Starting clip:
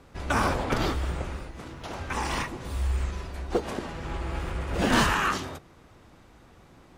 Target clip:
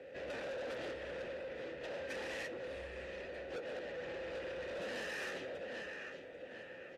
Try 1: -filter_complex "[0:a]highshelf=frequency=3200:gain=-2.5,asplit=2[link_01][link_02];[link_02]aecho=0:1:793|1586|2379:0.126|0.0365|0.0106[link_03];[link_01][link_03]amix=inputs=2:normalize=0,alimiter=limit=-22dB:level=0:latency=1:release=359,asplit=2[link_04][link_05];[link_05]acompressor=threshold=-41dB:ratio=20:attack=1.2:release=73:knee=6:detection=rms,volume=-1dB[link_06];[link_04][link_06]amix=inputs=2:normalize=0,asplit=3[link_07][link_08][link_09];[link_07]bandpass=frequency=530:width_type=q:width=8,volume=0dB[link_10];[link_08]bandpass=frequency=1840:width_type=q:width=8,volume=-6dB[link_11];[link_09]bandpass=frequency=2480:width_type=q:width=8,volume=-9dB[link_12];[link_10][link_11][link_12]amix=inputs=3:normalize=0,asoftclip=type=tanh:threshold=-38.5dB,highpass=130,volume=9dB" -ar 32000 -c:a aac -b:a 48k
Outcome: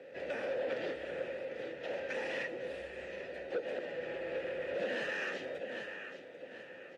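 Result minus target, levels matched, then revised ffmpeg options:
soft clipping: distortion −8 dB; 125 Hz band −4.5 dB
-filter_complex "[0:a]highshelf=frequency=3200:gain=-2.5,asplit=2[link_01][link_02];[link_02]aecho=0:1:793|1586|2379:0.126|0.0365|0.0106[link_03];[link_01][link_03]amix=inputs=2:normalize=0,alimiter=limit=-22dB:level=0:latency=1:release=359,asplit=2[link_04][link_05];[link_05]acompressor=threshold=-41dB:ratio=20:attack=1.2:release=73:knee=6:detection=rms,volume=-1dB[link_06];[link_04][link_06]amix=inputs=2:normalize=0,asplit=3[link_07][link_08][link_09];[link_07]bandpass=frequency=530:width_type=q:width=8,volume=0dB[link_10];[link_08]bandpass=frequency=1840:width_type=q:width=8,volume=-6dB[link_11];[link_09]bandpass=frequency=2480:width_type=q:width=8,volume=-9dB[link_12];[link_10][link_11][link_12]amix=inputs=3:normalize=0,asoftclip=type=tanh:threshold=-49dB,highpass=43,volume=9dB" -ar 32000 -c:a aac -b:a 48k

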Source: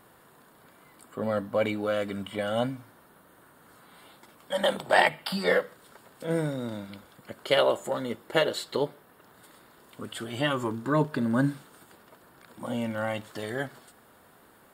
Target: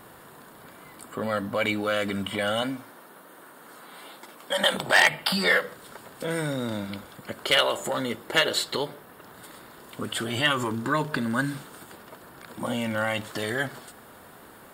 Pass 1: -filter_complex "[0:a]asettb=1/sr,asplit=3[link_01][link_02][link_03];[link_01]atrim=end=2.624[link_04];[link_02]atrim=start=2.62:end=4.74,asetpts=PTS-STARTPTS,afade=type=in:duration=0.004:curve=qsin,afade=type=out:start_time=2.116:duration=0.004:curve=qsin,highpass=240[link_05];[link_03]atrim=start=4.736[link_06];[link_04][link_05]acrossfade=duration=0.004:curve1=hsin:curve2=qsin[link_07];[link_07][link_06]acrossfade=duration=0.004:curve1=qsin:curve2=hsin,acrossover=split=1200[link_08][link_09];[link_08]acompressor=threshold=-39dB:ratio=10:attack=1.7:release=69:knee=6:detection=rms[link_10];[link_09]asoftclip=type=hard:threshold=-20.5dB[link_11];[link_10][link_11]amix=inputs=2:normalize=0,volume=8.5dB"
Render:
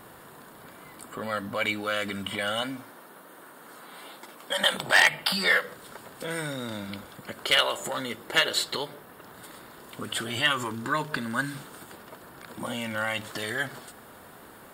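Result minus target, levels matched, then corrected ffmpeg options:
downward compressor: peak gain reduction +6 dB
-filter_complex "[0:a]asettb=1/sr,asplit=3[link_01][link_02][link_03];[link_01]atrim=end=2.624[link_04];[link_02]atrim=start=2.62:end=4.74,asetpts=PTS-STARTPTS,afade=type=in:duration=0.004:curve=qsin,afade=type=out:start_time=2.116:duration=0.004:curve=qsin,highpass=240[link_05];[link_03]atrim=start=4.736[link_06];[link_04][link_05]acrossfade=duration=0.004:curve1=hsin:curve2=qsin[link_07];[link_07][link_06]acrossfade=duration=0.004:curve1=qsin:curve2=hsin,acrossover=split=1200[link_08][link_09];[link_08]acompressor=threshold=-32.5dB:ratio=10:attack=1.7:release=69:knee=6:detection=rms[link_10];[link_09]asoftclip=type=hard:threshold=-20.5dB[link_11];[link_10][link_11]amix=inputs=2:normalize=0,volume=8.5dB"

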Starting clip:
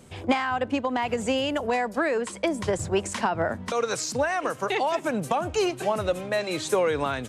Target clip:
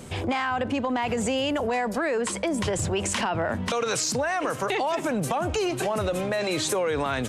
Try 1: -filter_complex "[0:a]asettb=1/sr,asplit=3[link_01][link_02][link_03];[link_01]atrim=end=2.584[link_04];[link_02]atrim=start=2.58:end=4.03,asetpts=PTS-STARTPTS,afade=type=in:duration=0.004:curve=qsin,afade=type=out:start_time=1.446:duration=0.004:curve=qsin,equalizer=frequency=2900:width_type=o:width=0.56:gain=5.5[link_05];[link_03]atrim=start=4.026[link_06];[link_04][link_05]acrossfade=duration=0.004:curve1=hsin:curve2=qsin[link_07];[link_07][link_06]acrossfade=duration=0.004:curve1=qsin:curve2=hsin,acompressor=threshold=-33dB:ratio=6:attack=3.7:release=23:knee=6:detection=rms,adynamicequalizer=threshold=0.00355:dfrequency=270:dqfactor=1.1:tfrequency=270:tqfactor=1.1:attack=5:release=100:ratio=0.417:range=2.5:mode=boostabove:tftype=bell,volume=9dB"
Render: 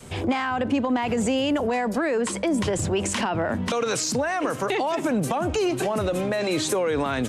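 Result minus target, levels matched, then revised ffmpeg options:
250 Hz band +2.5 dB
-filter_complex "[0:a]asettb=1/sr,asplit=3[link_01][link_02][link_03];[link_01]atrim=end=2.584[link_04];[link_02]atrim=start=2.58:end=4.03,asetpts=PTS-STARTPTS,afade=type=in:duration=0.004:curve=qsin,afade=type=out:start_time=1.446:duration=0.004:curve=qsin,equalizer=frequency=2900:width_type=o:width=0.56:gain=5.5[link_05];[link_03]atrim=start=4.026[link_06];[link_04][link_05]acrossfade=duration=0.004:curve1=hsin:curve2=qsin[link_07];[link_07][link_06]acrossfade=duration=0.004:curve1=qsin:curve2=hsin,acompressor=threshold=-33dB:ratio=6:attack=3.7:release=23:knee=6:detection=rms,volume=9dB"

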